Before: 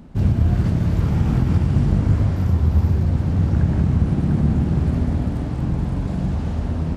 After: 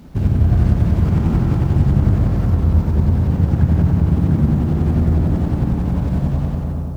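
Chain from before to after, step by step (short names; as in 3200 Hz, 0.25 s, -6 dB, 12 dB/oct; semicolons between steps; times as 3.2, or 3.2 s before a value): ending faded out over 0.80 s; in parallel at -1.5 dB: compressor, threshold -23 dBFS, peak gain reduction 11 dB; on the sum: tremolo saw up 11 Hz, depth 50%; added noise blue -58 dBFS; on a send: analogue delay 0.101 s, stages 1024, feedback 82%, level -5 dB; on the sum: running maximum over 5 samples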